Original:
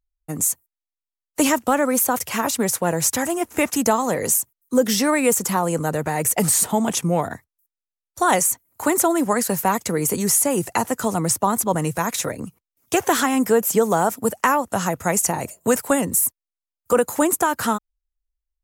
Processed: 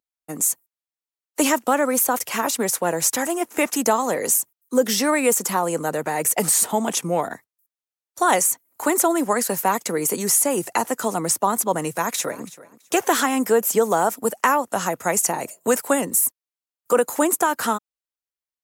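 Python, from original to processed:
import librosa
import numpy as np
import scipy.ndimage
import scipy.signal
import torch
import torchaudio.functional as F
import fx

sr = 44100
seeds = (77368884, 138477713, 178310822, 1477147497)

y = fx.echo_throw(x, sr, start_s=11.93, length_s=0.51, ms=330, feedback_pct=20, wet_db=-18.0)
y = scipy.signal.sosfilt(scipy.signal.butter(2, 250.0, 'highpass', fs=sr, output='sos'), y)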